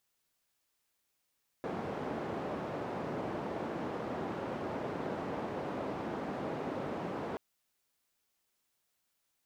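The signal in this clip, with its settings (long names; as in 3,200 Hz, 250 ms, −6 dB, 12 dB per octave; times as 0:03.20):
band-limited noise 140–630 Hz, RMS −38 dBFS 5.73 s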